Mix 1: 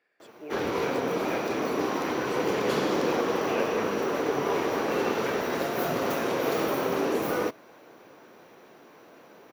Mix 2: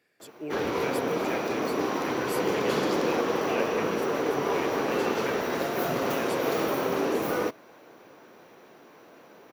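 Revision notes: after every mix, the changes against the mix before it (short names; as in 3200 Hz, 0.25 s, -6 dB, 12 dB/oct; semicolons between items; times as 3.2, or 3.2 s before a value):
speech: remove band-pass 1100 Hz, Q 0.61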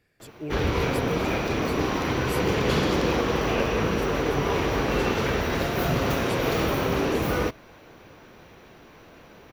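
background: add bell 3000 Hz +6 dB 1.9 oct; master: remove HPF 270 Hz 12 dB/oct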